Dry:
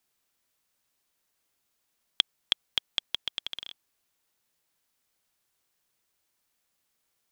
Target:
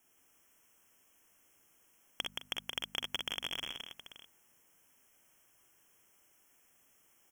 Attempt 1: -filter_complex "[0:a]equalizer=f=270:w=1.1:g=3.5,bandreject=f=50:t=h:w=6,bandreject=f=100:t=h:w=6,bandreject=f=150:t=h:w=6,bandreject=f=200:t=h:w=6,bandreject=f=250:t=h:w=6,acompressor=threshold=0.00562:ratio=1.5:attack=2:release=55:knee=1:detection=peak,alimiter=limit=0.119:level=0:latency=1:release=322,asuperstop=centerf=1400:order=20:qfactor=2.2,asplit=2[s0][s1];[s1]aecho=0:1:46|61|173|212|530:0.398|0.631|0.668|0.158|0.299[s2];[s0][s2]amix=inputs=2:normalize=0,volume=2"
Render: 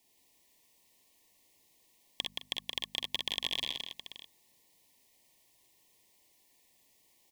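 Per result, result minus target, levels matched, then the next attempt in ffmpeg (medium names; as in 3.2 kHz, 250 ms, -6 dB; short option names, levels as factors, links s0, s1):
1 kHz band -4.0 dB; compression: peak gain reduction -3.5 dB
-filter_complex "[0:a]equalizer=f=270:w=1.1:g=3.5,bandreject=f=50:t=h:w=6,bandreject=f=100:t=h:w=6,bandreject=f=150:t=h:w=6,bandreject=f=200:t=h:w=6,bandreject=f=250:t=h:w=6,acompressor=threshold=0.00562:ratio=1.5:attack=2:release=55:knee=1:detection=peak,alimiter=limit=0.119:level=0:latency=1:release=322,asuperstop=centerf=4200:order=20:qfactor=2.2,asplit=2[s0][s1];[s1]aecho=0:1:46|61|173|212|530:0.398|0.631|0.668|0.158|0.299[s2];[s0][s2]amix=inputs=2:normalize=0,volume=2"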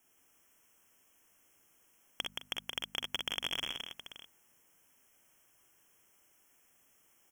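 compression: peak gain reduction -3.5 dB
-filter_complex "[0:a]equalizer=f=270:w=1.1:g=3.5,bandreject=f=50:t=h:w=6,bandreject=f=100:t=h:w=6,bandreject=f=150:t=h:w=6,bandreject=f=200:t=h:w=6,bandreject=f=250:t=h:w=6,acompressor=threshold=0.00178:ratio=1.5:attack=2:release=55:knee=1:detection=peak,alimiter=limit=0.119:level=0:latency=1:release=322,asuperstop=centerf=4200:order=20:qfactor=2.2,asplit=2[s0][s1];[s1]aecho=0:1:46|61|173|212|530:0.398|0.631|0.668|0.158|0.299[s2];[s0][s2]amix=inputs=2:normalize=0,volume=2"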